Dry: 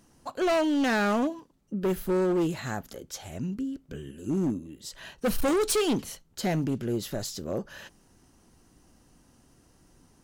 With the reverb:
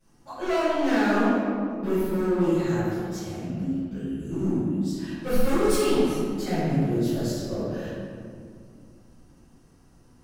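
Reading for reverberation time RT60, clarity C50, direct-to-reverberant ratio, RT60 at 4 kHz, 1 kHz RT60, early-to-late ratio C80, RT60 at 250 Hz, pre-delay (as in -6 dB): 2.2 s, -4.0 dB, -17.0 dB, 1.1 s, 2.0 s, -1.5 dB, 3.3 s, 3 ms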